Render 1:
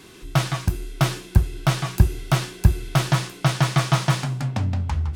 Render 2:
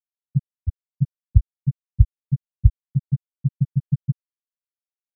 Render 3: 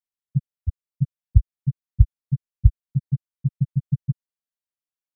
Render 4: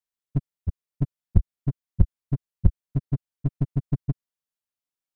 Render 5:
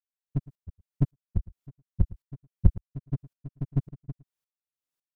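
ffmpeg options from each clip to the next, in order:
ffmpeg -i in.wav -af "lowpass=1200,afftfilt=real='re*gte(hypot(re,im),1.58)':imag='im*gte(hypot(re,im),1.58)':win_size=1024:overlap=0.75,volume=2dB" out.wav
ffmpeg -i in.wav -af "lowshelf=frequency=120:gain=4,volume=-3dB" out.wav
ffmpeg -i in.wav -af "aeval=exprs='clip(val(0),-1,0.0631)':channel_layout=same" out.wav
ffmpeg -i in.wav -filter_complex "[0:a]asplit=2[link_01][link_02];[link_02]adelay=110.8,volume=-25dB,highshelf=frequency=4000:gain=-2.49[link_03];[link_01][link_03]amix=inputs=2:normalize=0,aeval=exprs='val(0)*pow(10,-27*if(lt(mod(-1.8*n/s,1),2*abs(-1.8)/1000),1-mod(-1.8*n/s,1)/(2*abs(-1.8)/1000),(mod(-1.8*n/s,1)-2*abs(-1.8)/1000)/(1-2*abs(-1.8)/1000))/20)':channel_layout=same,volume=5dB" out.wav

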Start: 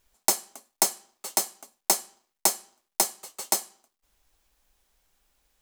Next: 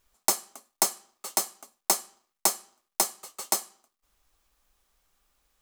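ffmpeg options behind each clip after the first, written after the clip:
ffmpeg -i in.wav -af "equalizer=frequency=1200:width=6.3:gain=7.5,volume=-1.5dB" out.wav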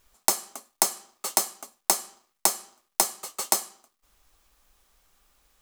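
ffmpeg -i in.wav -af "acompressor=threshold=-24dB:ratio=6,volume=6.5dB" out.wav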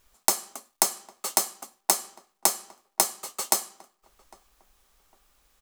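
ffmpeg -i in.wav -filter_complex "[0:a]asplit=2[link_01][link_02];[link_02]adelay=804,lowpass=frequency=1600:poles=1,volume=-23dB,asplit=2[link_03][link_04];[link_04]adelay=804,lowpass=frequency=1600:poles=1,volume=0.29[link_05];[link_01][link_03][link_05]amix=inputs=3:normalize=0" out.wav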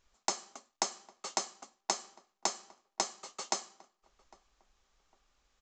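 ffmpeg -i in.wav -af "aresample=16000,aresample=44100,volume=-7dB" out.wav

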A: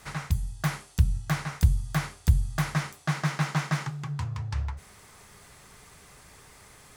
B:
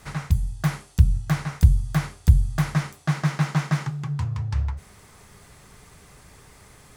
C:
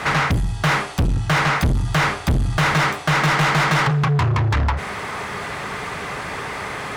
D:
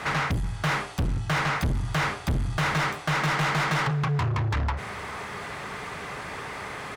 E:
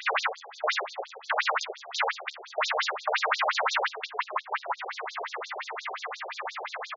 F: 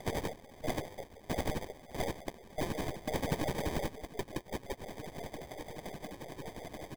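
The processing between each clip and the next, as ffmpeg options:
ffmpeg -i in.wav -af "lowshelf=frequency=450:gain=6" out.wav
ffmpeg -i in.wav -filter_complex "[0:a]bass=frequency=250:gain=2,treble=frequency=4000:gain=-14,asplit=2[link_01][link_02];[link_02]highpass=frequency=720:poles=1,volume=43dB,asoftclip=type=tanh:threshold=-1.5dB[link_03];[link_01][link_03]amix=inputs=2:normalize=0,lowpass=frequency=5200:poles=1,volume=-6dB,volume=-8dB" out.wav
ffmpeg -i in.wav -filter_complex "[0:a]asplit=2[link_01][link_02];[link_02]adelay=379,volume=-22dB,highshelf=frequency=4000:gain=-8.53[link_03];[link_01][link_03]amix=inputs=2:normalize=0,volume=-7.5dB" out.wav
ffmpeg -i in.wav -filter_complex "[0:a]asplit=2[link_01][link_02];[link_02]adelay=13,volume=-4dB[link_03];[link_01][link_03]amix=inputs=2:normalize=0,afftfilt=real='re*between(b*sr/1024,540*pow(5200/540,0.5+0.5*sin(2*PI*5.7*pts/sr))/1.41,540*pow(5200/540,0.5+0.5*sin(2*PI*5.7*pts/sr))*1.41)':imag='im*between(b*sr/1024,540*pow(5200/540,0.5+0.5*sin(2*PI*5.7*pts/sr))/1.41,540*pow(5200/540,0.5+0.5*sin(2*PI*5.7*pts/sr))*1.41)':win_size=1024:overlap=0.75,volume=6dB" out.wav
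ffmpeg -i in.wav -filter_complex "[0:a]aeval=exprs='if(lt(val(0),0),0.447*val(0),val(0))':channel_layout=same,acrossover=split=640[link_01][link_02];[link_02]acrusher=samples=32:mix=1:aa=0.000001[link_03];[link_01][link_03]amix=inputs=2:normalize=0,volume=-4.5dB" out.wav

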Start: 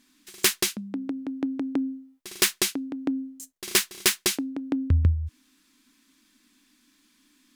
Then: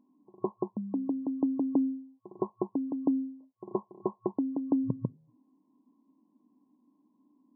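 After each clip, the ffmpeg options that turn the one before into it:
ffmpeg -i in.wav -af "afftfilt=real='re*between(b*sr/4096,110,1100)':imag='im*between(b*sr/4096,110,1100)':win_size=4096:overlap=0.75" out.wav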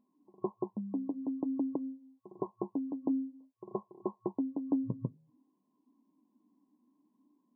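ffmpeg -i in.wav -af "flanger=delay=1.6:depth=8.6:regen=-43:speed=0.53:shape=sinusoidal" out.wav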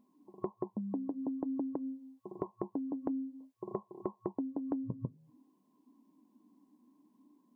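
ffmpeg -i in.wav -af "acompressor=threshold=-40dB:ratio=4,volume=5.5dB" out.wav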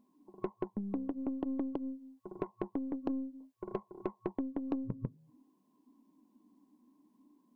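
ffmpeg -i in.wav -af "aeval=exprs='0.1*(cos(1*acos(clip(val(0)/0.1,-1,1)))-cos(1*PI/2))+0.02*(cos(3*acos(clip(val(0)/0.1,-1,1)))-cos(3*PI/2))+0.00224*(cos(8*acos(clip(val(0)/0.1,-1,1)))-cos(8*PI/2))':channel_layout=same,asoftclip=type=tanh:threshold=-30dB,volume=7.5dB" out.wav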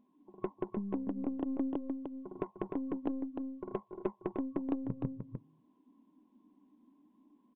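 ffmpeg -i in.wav -filter_complex "[0:a]asplit=2[link_01][link_02];[link_02]aecho=0:1:302:0.531[link_03];[link_01][link_03]amix=inputs=2:normalize=0,aresample=8000,aresample=44100" out.wav

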